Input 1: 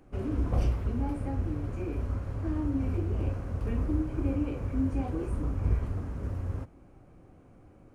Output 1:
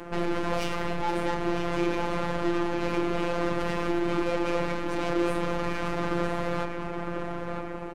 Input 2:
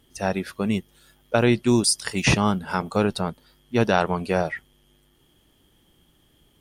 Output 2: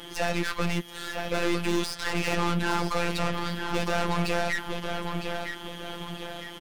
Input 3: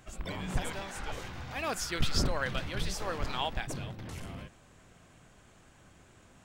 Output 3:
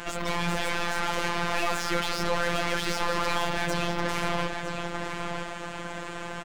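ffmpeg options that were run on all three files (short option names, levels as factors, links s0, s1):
-filter_complex "[0:a]acrossover=split=1600|5700[s0][s1][s2];[s0]acompressor=threshold=0.0224:ratio=4[s3];[s1]acompressor=threshold=0.01:ratio=4[s4];[s2]acompressor=threshold=0.00251:ratio=4[s5];[s3][s4][s5]amix=inputs=3:normalize=0,asplit=2[s6][s7];[s7]highpass=f=720:p=1,volume=63.1,asoftclip=type=tanh:threshold=0.158[s8];[s6][s8]amix=inputs=2:normalize=0,lowpass=f=1800:p=1,volume=0.501,asplit=2[s9][s10];[s10]adelay=958,lowpass=f=4300:p=1,volume=0.501,asplit=2[s11][s12];[s12]adelay=958,lowpass=f=4300:p=1,volume=0.46,asplit=2[s13][s14];[s14]adelay=958,lowpass=f=4300:p=1,volume=0.46,asplit=2[s15][s16];[s16]adelay=958,lowpass=f=4300:p=1,volume=0.46,asplit=2[s17][s18];[s18]adelay=958,lowpass=f=4300:p=1,volume=0.46,asplit=2[s19][s20];[s20]adelay=958,lowpass=f=4300:p=1,volume=0.46[s21];[s9][s11][s13][s15][s17][s19][s21]amix=inputs=7:normalize=0,aeval=exprs='0.188*(cos(1*acos(clip(val(0)/0.188,-1,1)))-cos(1*PI/2))+0.0188*(cos(8*acos(clip(val(0)/0.188,-1,1)))-cos(8*PI/2))':c=same,afftfilt=real='hypot(re,im)*cos(PI*b)':imag='0':win_size=1024:overlap=0.75"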